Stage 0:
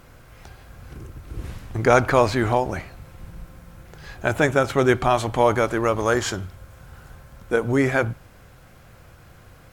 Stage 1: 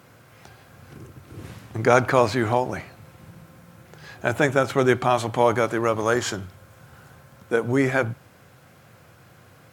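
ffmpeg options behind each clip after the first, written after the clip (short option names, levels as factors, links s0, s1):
-af "highpass=f=99:w=0.5412,highpass=f=99:w=1.3066,volume=0.891"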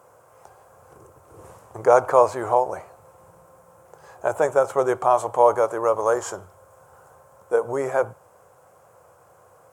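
-af "equalizer=f=125:t=o:w=1:g=-5,equalizer=f=250:t=o:w=1:g=-11,equalizer=f=500:t=o:w=1:g=11,equalizer=f=1000:t=o:w=1:g=11,equalizer=f=2000:t=o:w=1:g=-7,equalizer=f=4000:t=o:w=1:g=-11,equalizer=f=8000:t=o:w=1:g=9,volume=0.473"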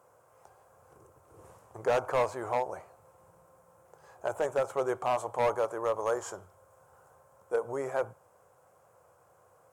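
-af "asoftclip=type=hard:threshold=0.237,volume=0.355"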